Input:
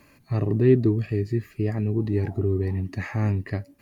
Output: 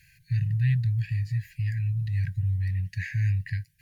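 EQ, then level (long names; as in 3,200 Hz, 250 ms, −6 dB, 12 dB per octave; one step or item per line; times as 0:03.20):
linear-phase brick-wall band-stop 170–1,500 Hz
0.0 dB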